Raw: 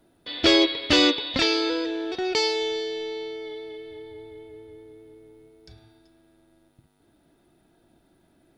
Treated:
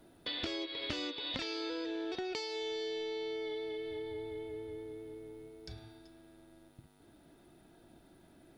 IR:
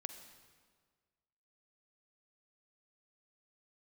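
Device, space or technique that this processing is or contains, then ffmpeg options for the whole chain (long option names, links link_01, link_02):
serial compression, peaks first: -af "acompressor=threshold=-30dB:ratio=10,acompressor=threshold=-39dB:ratio=3,volume=1.5dB"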